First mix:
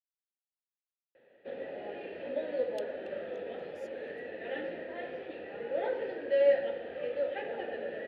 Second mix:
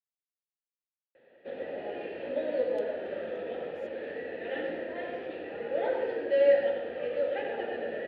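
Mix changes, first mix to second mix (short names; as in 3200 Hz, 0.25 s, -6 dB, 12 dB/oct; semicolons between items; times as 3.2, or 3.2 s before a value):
speech -9.5 dB; background: send +11.0 dB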